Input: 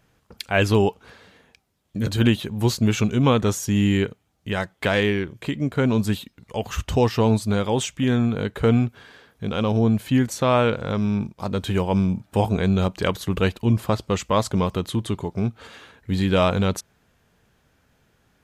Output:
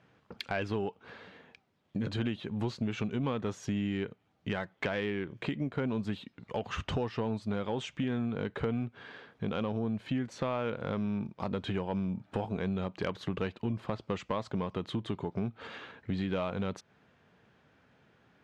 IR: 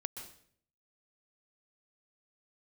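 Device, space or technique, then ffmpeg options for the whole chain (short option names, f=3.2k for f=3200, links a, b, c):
AM radio: -af "highpass=120,lowpass=3.3k,acompressor=threshold=-30dB:ratio=5,asoftclip=type=tanh:threshold=-20dB"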